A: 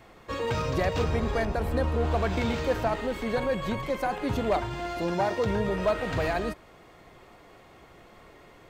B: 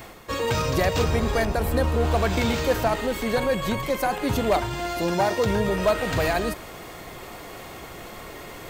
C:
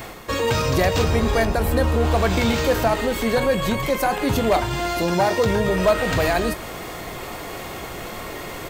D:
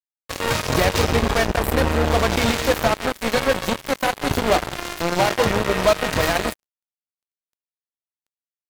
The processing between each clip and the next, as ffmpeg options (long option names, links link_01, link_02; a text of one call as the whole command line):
ffmpeg -i in.wav -af "areverse,acompressor=mode=upward:threshold=-34dB:ratio=2.5,areverse,aemphasis=mode=production:type=50kf,volume=4dB" out.wav
ffmpeg -i in.wav -filter_complex "[0:a]asplit=2[link_01][link_02];[link_02]alimiter=limit=-22.5dB:level=0:latency=1:release=175,volume=1dB[link_03];[link_01][link_03]amix=inputs=2:normalize=0,asplit=2[link_04][link_05];[link_05]adelay=22,volume=-12.5dB[link_06];[link_04][link_06]amix=inputs=2:normalize=0" out.wav
ffmpeg -i in.wav -filter_complex "[0:a]asplit=2[link_01][link_02];[link_02]adelay=170,highpass=300,lowpass=3400,asoftclip=type=hard:threshold=-16.5dB,volume=-9dB[link_03];[link_01][link_03]amix=inputs=2:normalize=0,aeval=exprs='sgn(val(0))*max(abs(val(0))-0.00596,0)':channel_layout=same,acrusher=bits=2:mix=0:aa=0.5" out.wav